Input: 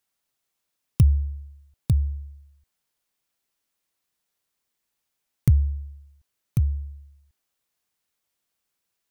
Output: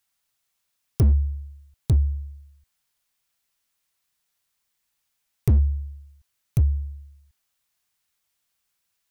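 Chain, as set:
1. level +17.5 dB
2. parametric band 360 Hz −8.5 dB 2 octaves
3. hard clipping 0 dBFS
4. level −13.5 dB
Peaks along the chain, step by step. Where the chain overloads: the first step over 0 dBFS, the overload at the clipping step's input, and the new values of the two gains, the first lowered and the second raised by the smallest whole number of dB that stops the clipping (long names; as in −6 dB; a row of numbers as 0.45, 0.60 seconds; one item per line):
+11.0, +9.5, 0.0, −13.5 dBFS
step 1, 9.5 dB
step 1 +7.5 dB, step 4 −3.5 dB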